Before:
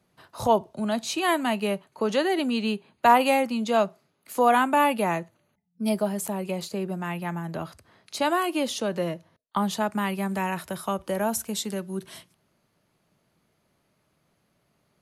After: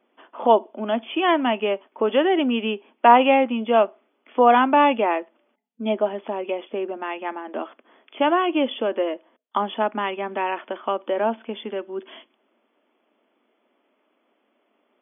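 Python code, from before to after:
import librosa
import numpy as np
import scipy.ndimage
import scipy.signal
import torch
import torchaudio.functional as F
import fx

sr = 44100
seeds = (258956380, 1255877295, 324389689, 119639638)

y = fx.brickwall_bandpass(x, sr, low_hz=220.0, high_hz=3500.0)
y = fx.peak_eq(y, sr, hz=1700.0, db=-4.0, octaves=1.0)
y = y * librosa.db_to_amplitude(5.5)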